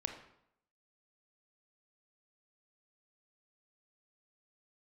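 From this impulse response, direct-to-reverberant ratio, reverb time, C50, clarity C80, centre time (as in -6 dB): 4.5 dB, 0.75 s, 7.5 dB, 10.0 dB, 20 ms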